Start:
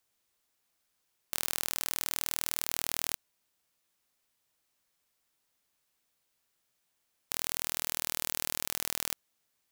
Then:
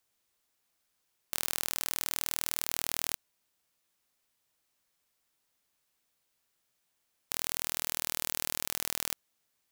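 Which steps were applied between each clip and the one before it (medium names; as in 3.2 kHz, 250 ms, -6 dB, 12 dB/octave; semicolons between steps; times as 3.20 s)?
no audible change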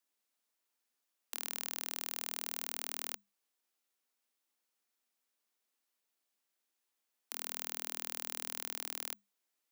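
frequency shift +200 Hz; trim -7 dB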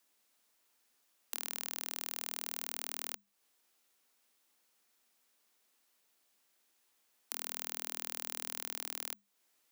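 compression 2:1, threshold -52 dBFS, peak gain reduction 10.5 dB; trim +10 dB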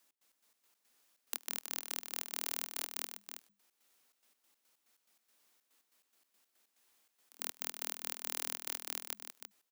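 trance gate "x.x.x.x.xxx.x." 142 bpm -24 dB; delay 323 ms -8 dB; trim +2 dB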